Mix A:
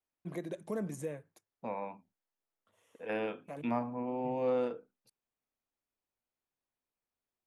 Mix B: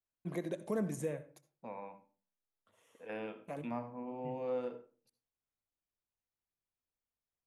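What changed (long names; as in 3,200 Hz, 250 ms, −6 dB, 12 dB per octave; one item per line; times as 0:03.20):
second voice −9.0 dB
reverb: on, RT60 0.40 s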